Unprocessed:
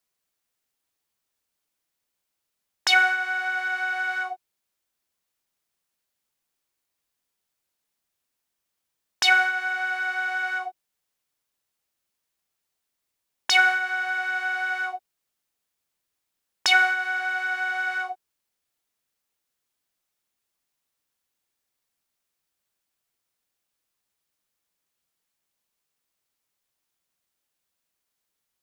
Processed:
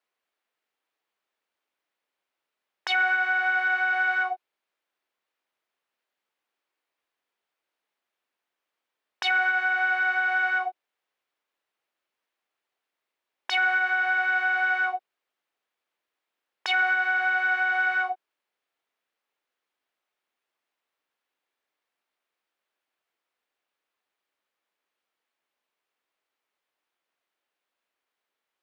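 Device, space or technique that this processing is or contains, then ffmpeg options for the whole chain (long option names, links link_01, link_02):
DJ mixer with the lows and highs turned down: -filter_complex "[0:a]acrossover=split=280 3400:gain=0.0891 1 0.141[link_01][link_02][link_03];[link_01][link_02][link_03]amix=inputs=3:normalize=0,alimiter=limit=-19dB:level=0:latency=1:release=113,volume=3.5dB"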